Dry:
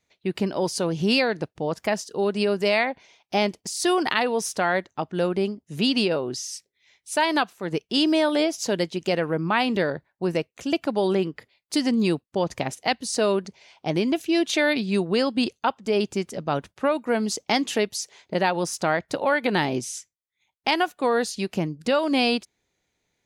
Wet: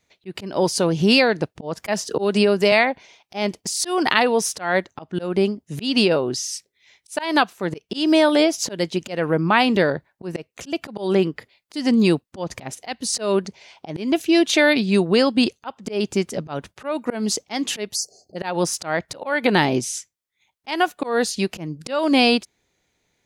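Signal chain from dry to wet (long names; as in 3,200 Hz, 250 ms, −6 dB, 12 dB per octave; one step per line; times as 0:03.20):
0:17.95–0:18.36: time-frequency box erased 790–4,200 Hz
volume swells 191 ms
0:01.88–0:02.72: multiband upward and downward compressor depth 70%
level +5.5 dB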